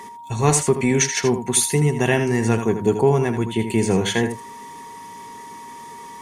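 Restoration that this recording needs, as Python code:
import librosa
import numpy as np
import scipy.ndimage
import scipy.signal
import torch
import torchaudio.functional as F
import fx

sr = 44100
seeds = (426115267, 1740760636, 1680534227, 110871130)

y = fx.notch(x, sr, hz=940.0, q=30.0)
y = fx.fix_echo_inverse(y, sr, delay_ms=80, level_db=-9.0)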